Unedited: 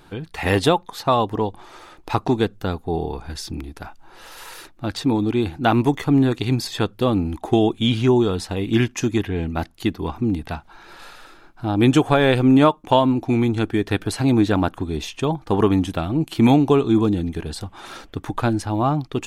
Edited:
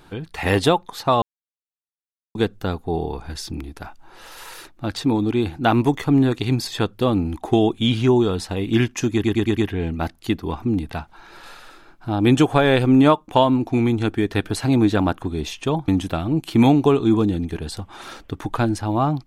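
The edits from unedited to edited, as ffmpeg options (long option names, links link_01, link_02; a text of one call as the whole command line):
ffmpeg -i in.wav -filter_complex "[0:a]asplit=8[link_01][link_02][link_03][link_04][link_05][link_06][link_07][link_08];[link_01]atrim=end=1.22,asetpts=PTS-STARTPTS,afade=type=out:start_time=1.216:duration=0.004:curve=hsin[link_09];[link_02]atrim=start=1.22:end=2.35,asetpts=PTS-STARTPTS,volume=0[link_10];[link_03]atrim=start=2.35:end=9.242,asetpts=PTS-STARTPTS,afade=type=in:duration=0.004:curve=hsin[link_11];[link_04]atrim=start=9.128:end=9.242[link_12];[link_05]atrim=start=9.128:end=9.242[link_13];[link_06]atrim=start=9.128:end=9.242[link_14];[link_07]atrim=start=9.128:end=15.442[link_15];[link_08]atrim=start=15.718[link_16];[link_09][link_10][link_11]concat=n=3:v=0:a=1[link_17];[link_17][link_12]acrossfade=duration=0.004:curve1=hsin:curve2=hsin[link_18];[link_18][link_13]acrossfade=duration=0.004:curve1=hsin:curve2=hsin[link_19];[link_19][link_14]acrossfade=duration=0.004:curve1=hsin:curve2=hsin[link_20];[link_20][link_15]acrossfade=duration=0.004:curve1=hsin:curve2=hsin[link_21];[link_21][link_16]acrossfade=duration=0.004:curve1=hsin:curve2=hsin" out.wav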